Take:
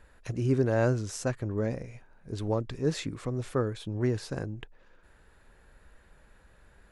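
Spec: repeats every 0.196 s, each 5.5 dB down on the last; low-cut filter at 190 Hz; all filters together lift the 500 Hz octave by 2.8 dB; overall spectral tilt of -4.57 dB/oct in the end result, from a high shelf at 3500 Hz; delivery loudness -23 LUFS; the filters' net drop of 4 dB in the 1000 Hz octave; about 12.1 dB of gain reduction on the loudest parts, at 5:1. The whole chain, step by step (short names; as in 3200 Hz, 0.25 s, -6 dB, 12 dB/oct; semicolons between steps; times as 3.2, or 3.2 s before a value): HPF 190 Hz; bell 500 Hz +5.5 dB; bell 1000 Hz -9 dB; high shelf 3500 Hz +5.5 dB; compressor 5:1, threshold -34 dBFS; feedback echo 0.196 s, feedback 53%, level -5.5 dB; gain +15 dB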